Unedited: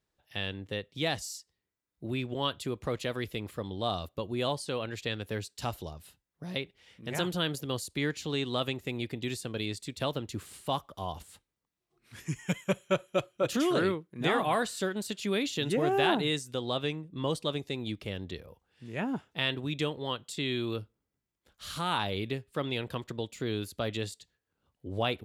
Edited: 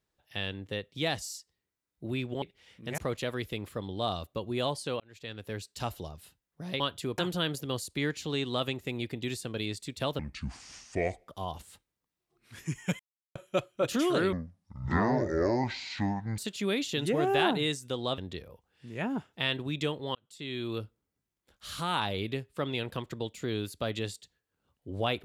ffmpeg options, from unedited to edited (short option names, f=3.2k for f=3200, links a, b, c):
-filter_complex "[0:a]asplit=14[a][b][c][d][e][f][g][h][i][j][k][l][m][n];[a]atrim=end=2.422[o];[b]atrim=start=6.618:end=7.182[p];[c]atrim=start=2.798:end=4.82,asetpts=PTS-STARTPTS,afade=t=out:st=2.018:d=0.004:c=hsin[q];[d]atrim=start=4.82:end=6.622,asetpts=PTS-STARTPTS,afade=t=in:d=1.03:c=qsin[r];[e]atrim=start=2.418:end=2.802[s];[f]atrim=start=7.178:end=10.194[t];[g]atrim=start=10.19:end=10.89,asetpts=PTS-STARTPTS,asetrate=28224,aresample=44100,atrim=end_sample=48234,asetpts=PTS-STARTPTS[u];[h]atrim=start=10.886:end=12.6,asetpts=PTS-STARTPTS,afade=t=out:st=1.71:d=0.004:c=hsin[v];[i]atrim=start=12.6:end=12.96,asetpts=PTS-STARTPTS,volume=0[w];[j]atrim=start=12.96:end=13.934,asetpts=PTS-STARTPTS,afade=t=in:d=0.004:c=hsin[x];[k]atrim=start=13.93:end=15.02,asetpts=PTS-STARTPTS,asetrate=23373,aresample=44100,atrim=end_sample=90696,asetpts=PTS-STARTPTS[y];[l]atrim=start=15.016:end=16.822[z];[m]atrim=start=18.158:end=20.13,asetpts=PTS-STARTPTS,afade=t=out:st=1.968:d=0.004:c=hsin[aa];[n]atrim=start=20.13,asetpts=PTS-STARTPTS,afade=t=in:d=0.66[ab];[o][p]acrossfade=d=0.004:c1=hsin:c2=hsin[ac];[q][r]concat=n=2:v=0:a=1[ad];[ac][ad]acrossfade=d=0.004:c1=hsin:c2=hsin[ae];[ae][s]acrossfade=d=0.004:c1=hsin:c2=hsin[af];[af][t]acrossfade=d=0.004:c1=hsin:c2=hsin[ag];[ag][u]acrossfade=d=0.004:c1=hsin:c2=hsin[ah];[v][w][x]concat=n=3:v=0:a=1[ai];[ah][ai]acrossfade=d=0.004:c1=hsin:c2=hsin[aj];[aj][y]acrossfade=d=0.004:c1=hsin:c2=hsin[ak];[ak][z]acrossfade=d=0.004:c1=hsin:c2=hsin[al];[aa][ab]concat=n=2:v=0:a=1[am];[al][am]acrossfade=d=0.004:c1=hsin:c2=hsin"